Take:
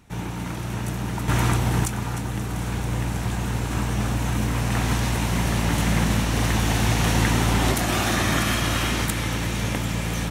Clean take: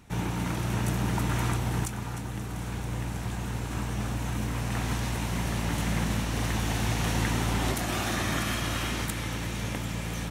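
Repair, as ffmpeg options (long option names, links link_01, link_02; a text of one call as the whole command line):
ffmpeg -i in.wav -af "asetnsamples=nb_out_samples=441:pad=0,asendcmd='1.28 volume volume -7dB',volume=0dB" out.wav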